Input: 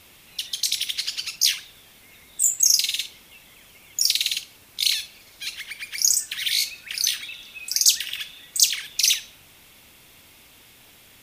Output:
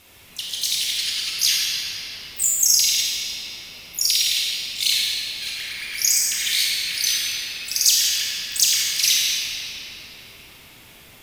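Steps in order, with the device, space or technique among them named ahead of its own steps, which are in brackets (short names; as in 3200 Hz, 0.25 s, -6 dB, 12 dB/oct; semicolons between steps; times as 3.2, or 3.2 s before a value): shimmer-style reverb (harmoniser +12 st -12 dB; reverb RT60 4.6 s, pre-delay 24 ms, DRR -5.5 dB); gain -1.5 dB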